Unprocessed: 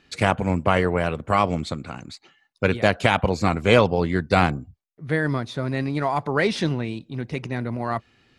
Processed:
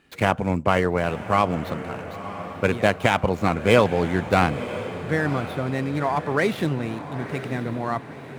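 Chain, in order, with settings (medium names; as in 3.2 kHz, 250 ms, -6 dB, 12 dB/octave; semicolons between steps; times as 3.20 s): median filter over 9 samples; bass shelf 72 Hz -6 dB; on a send: echo that smears into a reverb 992 ms, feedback 52%, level -12 dB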